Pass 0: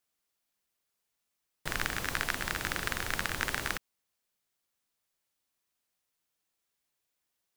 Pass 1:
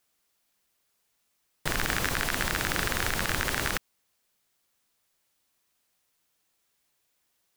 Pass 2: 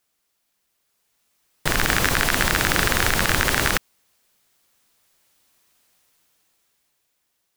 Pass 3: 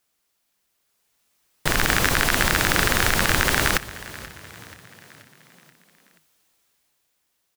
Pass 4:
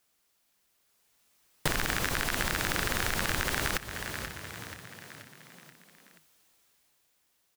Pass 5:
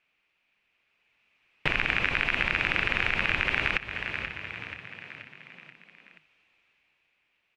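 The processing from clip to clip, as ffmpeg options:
-af "alimiter=limit=-18.5dB:level=0:latency=1:release=26,volume=8.5dB"
-af "dynaudnorm=f=200:g=13:m=10dB,volume=1dB"
-filter_complex "[0:a]asplit=6[a][b][c][d][e][f];[b]adelay=481,afreqshift=30,volume=-18dB[g];[c]adelay=962,afreqshift=60,volume=-23.4dB[h];[d]adelay=1443,afreqshift=90,volume=-28.7dB[i];[e]adelay=1924,afreqshift=120,volume=-34.1dB[j];[f]adelay=2405,afreqshift=150,volume=-39.4dB[k];[a][g][h][i][j][k]amix=inputs=6:normalize=0"
-af "acompressor=threshold=-25dB:ratio=12"
-af "lowpass=f=2.5k:t=q:w=5.7,volume=-1.5dB"

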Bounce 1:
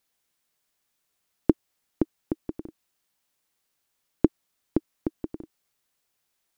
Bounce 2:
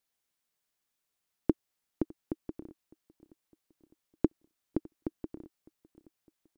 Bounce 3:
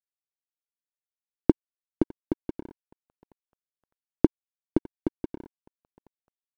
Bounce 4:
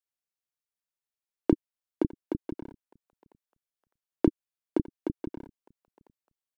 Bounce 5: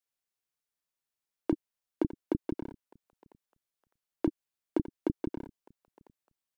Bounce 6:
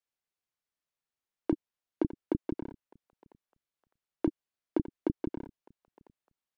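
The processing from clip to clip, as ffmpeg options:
-af "aecho=1:1:607|1214|1821|2428:0.0668|0.0368|0.0202|0.0111,volume=-7dB"
-af "aeval=exprs='sgn(val(0))*max(abs(val(0))-0.00299,0)':c=same,volume=8dB"
-filter_complex "[0:a]acrossover=split=270[a][b];[a]adelay=30[c];[c][b]amix=inputs=2:normalize=0"
-af "alimiter=limit=-19dB:level=0:latency=1:release=13,volume=2dB"
-af "lowpass=f=3.8k:p=1"

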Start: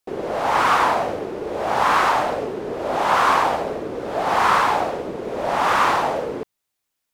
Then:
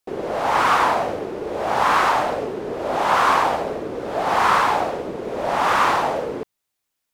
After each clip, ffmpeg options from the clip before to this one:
-af anull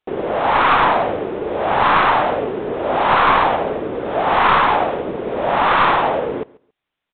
-af "aresample=8000,aeval=exprs='clip(val(0),-1,0.15)':c=same,aresample=44100,aecho=1:1:138|276:0.0708|0.0135,volume=4.5dB"

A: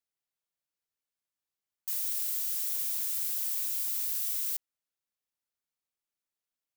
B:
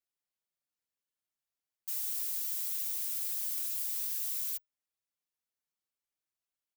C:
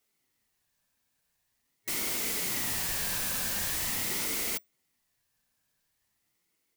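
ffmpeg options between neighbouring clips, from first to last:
-filter_complex "[0:a]asplit=2[a][b];[b]adelay=5.7,afreqshift=2.2[c];[a][c]amix=inputs=2:normalize=1"
-af "aeval=exprs='0.0794*sin(PI/2*7.94*val(0)/0.0794)':c=same,superequalizer=7b=0.398:9b=2.82:12b=0.631,aeval=exprs='val(0)*sin(2*PI*1000*n/s+1000*0.25/0.44*sin(2*PI*0.44*n/s))':c=same,volume=-4dB"

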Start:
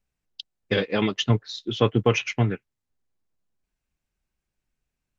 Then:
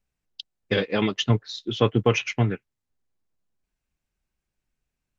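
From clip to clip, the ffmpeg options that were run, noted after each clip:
-af anull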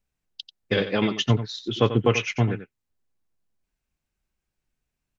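-af "aecho=1:1:90:0.266"

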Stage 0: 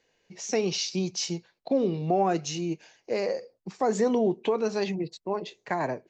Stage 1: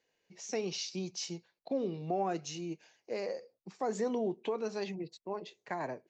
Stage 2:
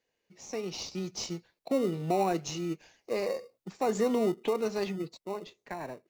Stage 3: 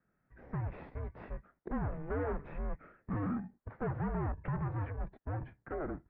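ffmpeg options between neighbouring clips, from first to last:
-af "lowshelf=f=74:g=-10.5,volume=-8.5dB"
-filter_complex "[0:a]dynaudnorm=f=200:g=11:m=7dB,asplit=2[a][b];[b]acrusher=samples=27:mix=1:aa=0.000001,volume=-10.5dB[c];[a][c]amix=inputs=2:normalize=0,volume=-3dB"
-af "aeval=exprs='(tanh(79.4*val(0)+0.25)-tanh(0.25))/79.4':c=same,highpass=f=250:t=q:w=0.5412,highpass=f=250:t=q:w=1.307,lowpass=f=2k:t=q:w=0.5176,lowpass=f=2k:t=q:w=0.7071,lowpass=f=2k:t=q:w=1.932,afreqshift=-300,volume=6dB"

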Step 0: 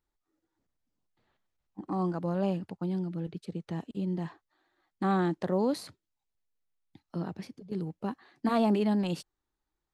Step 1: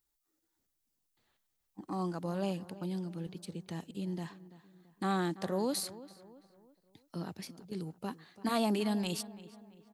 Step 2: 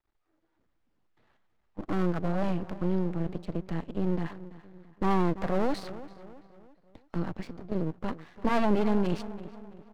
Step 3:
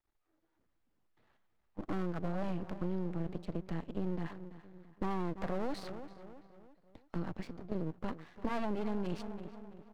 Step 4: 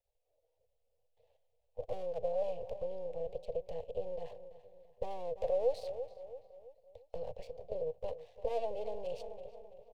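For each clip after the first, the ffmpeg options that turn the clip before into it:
-filter_complex "[0:a]crystalizer=i=4.5:c=0,asplit=2[a][b];[b]adelay=335,lowpass=f=2.7k:p=1,volume=-16.5dB,asplit=2[c][d];[d]adelay=335,lowpass=f=2.7k:p=1,volume=0.44,asplit=2[e][f];[f]adelay=335,lowpass=f=2.7k:p=1,volume=0.44,asplit=2[g][h];[h]adelay=335,lowpass=f=2.7k:p=1,volume=0.44[i];[a][c][e][g][i]amix=inputs=5:normalize=0,volume=-5.5dB"
-filter_complex "[0:a]lowpass=1.8k,aeval=exprs='max(val(0),0)':c=same,asplit=2[a][b];[b]alimiter=level_in=9dB:limit=-24dB:level=0:latency=1,volume=-9dB,volume=-1.5dB[c];[a][c]amix=inputs=2:normalize=0,volume=8dB"
-af "acompressor=threshold=-26dB:ratio=6,volume=-4dB"
-af "firequalizer=gain_entry='entry(110,0);entry(180,-21);entry(330,-24);entry(480,15);entry(1300,-25);entry(2600,-2)':delay=0.05:min_phase=1,volume=-1.5dB"

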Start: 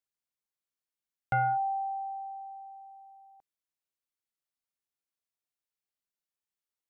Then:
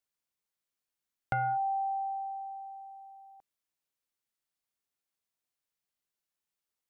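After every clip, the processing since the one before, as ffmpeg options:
-af "acompressor=threshold=-31dB:ratio=6,volume=2.5dB"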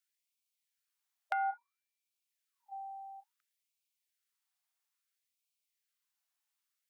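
-af "acompressor=threshold=-36dB:ratio=2,afftfilt=real='re*gte(b*sr/1024,610*pow(2200/610,0.5+0.5*sin(2*PI*0.59*pts/sr)))':imag='im*gte(b*sr/1024,610*pow(2200/610,0.5+0.5*sin(2*PI*0.59*pts/sr)))':win_size=1024:overlap=0.75,volume=2.5dB"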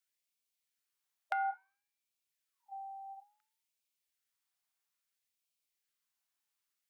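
-af "flanger=delay=8.4:depth=2.5:regen=89:speed=0.53:shape=triangular,volume=4dB"

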